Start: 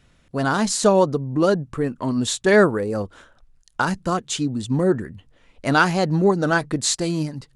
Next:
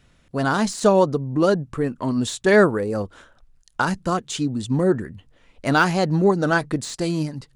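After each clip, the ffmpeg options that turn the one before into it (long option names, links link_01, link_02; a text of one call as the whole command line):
ffmpeg -i in.wav -af "deesser=0.5" out.wav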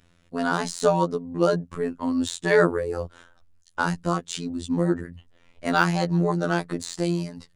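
ffmpeg -i in.wav -af "afftfilt=real='hypot(re,im)*cos(PI*b)':imag='0':win_size=2048:overlap=0.75" out.wav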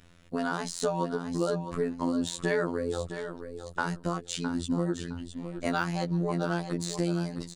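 ffmpeg -i in.wav -filter_complex "[0:a]acompressor=threshold=-33dB:ratio=3,asplit=2[link_01][link_02];[link_02]aecho=0:1:662|1324|1986:0.335|0.0837|0.0209[link_03];[link_01][link_03]amix=inputs=2:normalize=0,volume=3.5dB" out.wav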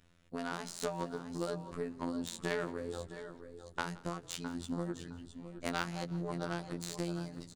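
ffmpeg -i in.wav -filter_complex "[0:a]aeval=exprs='0.282*(cos(1*acos(clip(val(0)/0.282,-1,1)))-cos(1*PI/2))+0.0501*(cos(3*acos(clip(val(0)/0.282,-1,1)))-cos(3*PI/2))':channel_layout=same,asplit=6[link_01][link_02][link_03][link_04][link_05][link_06];[link_02]adelay=171,afreqshift=-33,volume=-21dB[link_07];[link_03]adelay=342,afreqshift=-66,volume=-25.3dB[link_08];[link_04]adelay=513,afreqshift=-99,volume=-29.6dB[link_09];[link_05]adelay=684,afreqshift=-132,volume=-33.9dB[link_10];[link_06]adelay=855,afreqshift=-165,volume=-38.2dB[link_11];[link_01][link_07][link_08][link_09][link_10][link_11]amix=inputs=6:normalize=0,volume=-3.5dB" out.wav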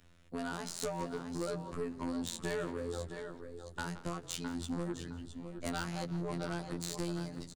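ffmpeg -i in.wav -filter_complex "[0:a]acrossover=split=120|4000[link_01][link_02][link_03];[link_01]asplit=2[link_04][link_05];[link_05]adelay=14,volume=-3.5dB[link_06];[link_04][link_06]amix=inputs=2:normalize=0[link_07];[link_02]asoftclip=type=tanh:threshold=-34dB[link_08];[link_07][link_08][link_03]amix=inputs=3:normalize=0,volume=3dB" out.wav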